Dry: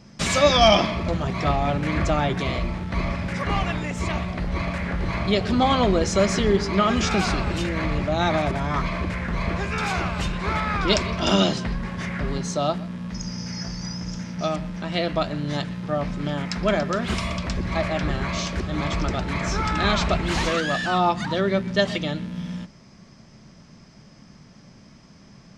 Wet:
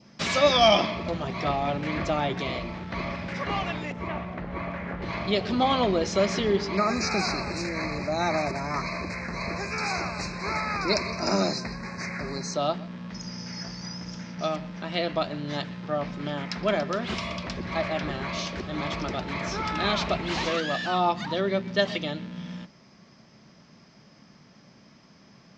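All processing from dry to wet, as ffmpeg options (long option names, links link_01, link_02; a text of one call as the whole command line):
ffmpeg -i in.wav -filter_complex "[0:a]asettb=1/sr,asplit=3[link_01][link_02][link_03];[link_01]atrim=end=3.924[link_04];[link_02]atrim=start=3.92:end=5.02,asetpts=PTS-STARTPTS,afade=type=in:duration=0.004:curve=qsin,afade=type=out:start_time=1.096:duration=0.004:curve=qsin,lowpass=2000,aeval=exprs='sgn(val(0))*max(abs(val(0))-0.00224,0)':channel_layout=same[link_05];[link_03]atrim=start=5.016[link_06];[link_04][link_05]acrossfade=duration=0.004:curve1=hsin:curve2=qsin[link_07];[link_07][link_06]acrossfade=duration=0.004:curve1=qsin:curve2=hsin,asettb=1/sr,asplit=3[link_08][link_09][link_10];[link_08]atrim=end=6.774[link_11];[link_09]atrim=start=6.77:end=12.54,asetpts=PTS-STARTPTS,afade=type=in:duration=0.004:curve=qsin,afade=type=out:start_time=5.766:duration=0.004:curve=qsin,acrossover=split=4700[link_12][link_13];[link_13]acompressor=threshold=-40dB:ratio=4:attack=1:release=60[link_14];[link_12][link_14]amix=inputs=2:normalize=0,asuperstop=centerf=3200:order=12:qfactor=2.3,aemphasis=mode=production:type=75fm[link_15];[link_10]atrim=start=12.536[link_16];[link_11][link_15]acrossfade=duration=0.004:curve1=hsin:curve2=qsin[link_17];[link_17][link_16]acrossfade=duration=0.004:curve1=qsin:curve2=hsin,lowpass=frequency=5900:width=0.5412,lowpass=frequency=5900:width=1.3066,adynamicequalizer=threshold=0.01:dfrequency=1500:dqfactor=2:tfrequency=1500:tqfactor=2:attack=5:release=100:ratio=0.375:range=2:mode=cutabove:tftype=bell,highpass=frequency=230:poles=1,volume=-2dB" out.wav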